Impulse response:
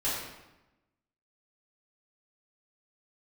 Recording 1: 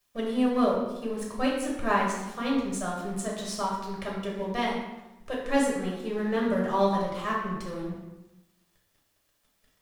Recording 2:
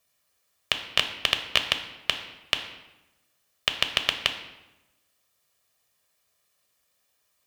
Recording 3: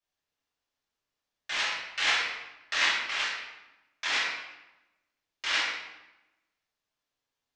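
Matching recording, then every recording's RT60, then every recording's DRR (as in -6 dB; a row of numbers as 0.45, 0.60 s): 3; 1.0, 1.0, 1.0 s; -4.0, 6.0, -10.5 dB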